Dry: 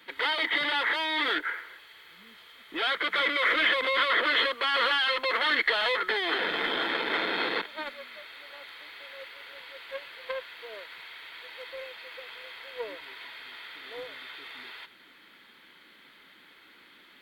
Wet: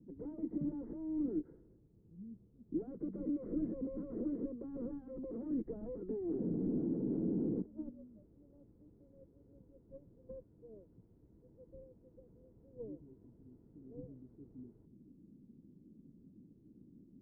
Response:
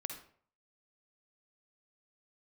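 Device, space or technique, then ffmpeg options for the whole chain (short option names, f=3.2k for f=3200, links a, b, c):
the neighbour's flat through the wall: -af "lowpass=f=250:w=0.5412,lowpass=f=250:w=1.3066,equalizer=f=120:t=o:w=0.98:g=4,volume=11.5dB"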